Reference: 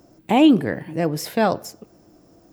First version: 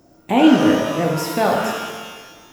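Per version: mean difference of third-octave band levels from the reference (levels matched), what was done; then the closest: 10.5 dB: pitch-shifted reverb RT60 1.4 s, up +12 st, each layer -8 dB, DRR -1 dB; trim -1 dB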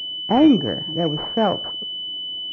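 6.0 dB: class-D stage that switches slowly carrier 3 kHz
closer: second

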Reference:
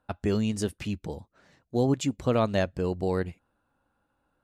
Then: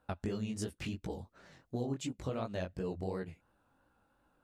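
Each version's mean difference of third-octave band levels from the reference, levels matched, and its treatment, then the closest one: 4.5 dB: compression 5:1, threshold -37 dBFS, peak gain reduction 16 dB; chorus 2.8 Hz, delay 15.5 ms, depth 7.2 ms; trim +4.5 dB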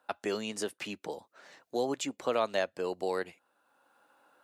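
7.0 dB: high-pass 480 Hz 12 dB/octave; three bands compressed up and down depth 40%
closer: first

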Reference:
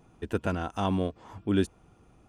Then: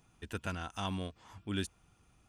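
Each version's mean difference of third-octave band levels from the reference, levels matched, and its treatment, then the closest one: 4.5 dB: amplifier tone stack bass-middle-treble 5-5-5; trim +7 dB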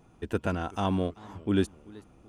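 1.5 dB: modulated delay 380 ms, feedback 47%, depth 172 cents, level -22 dB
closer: second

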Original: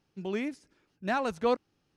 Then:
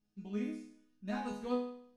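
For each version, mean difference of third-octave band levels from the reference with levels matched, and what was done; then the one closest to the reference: 5.5 dB: tone controls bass +14 dB, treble +5 dB; chord resonator G#3 minor, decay 0.63 s; trim +8.5 dB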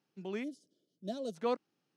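3.0 dB: high-pass 150 Hz 24 dB/octave; time-frequency box 0.44–1.35 s, 700–2900 Hz -23 dB; trim -6 dB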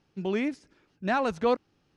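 1.5 dB: in parallel at -1.5 dB: peak limiter -26 dBFS, peak gain reduction 10.5 dB; on the sum: distance through air 52 m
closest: third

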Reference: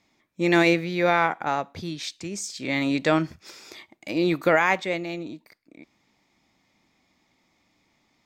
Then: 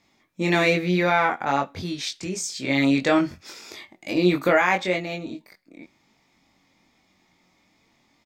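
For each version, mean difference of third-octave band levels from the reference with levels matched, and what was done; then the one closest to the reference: 2.0 dB: in parallel at +0.5 dB: peak limiter -14.5 dBFS, peak gain reduction 7 dB; on the sum: flange 0.61 Hz, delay 3.3 ms, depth 2.5 ms, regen +87%; doubling 22 ms -3 dB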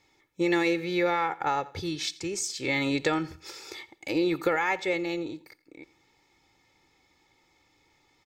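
4.0 dB: comb 2.3 ms, depth 71%; compression 4:1, threshold -23 dBFS, peak gain reduction 9 dB; feedback delay 86 ms, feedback 33%, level -20.5 dB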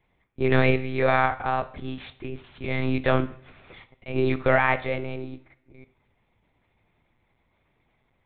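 8.5 dB: median filter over 9 samples; monotone LPC vocoder at 8 kHz 130 Hz; two-slope reverb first 0.56 s, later 1.5 s, from -18 dB, DRR 12.5 dB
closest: first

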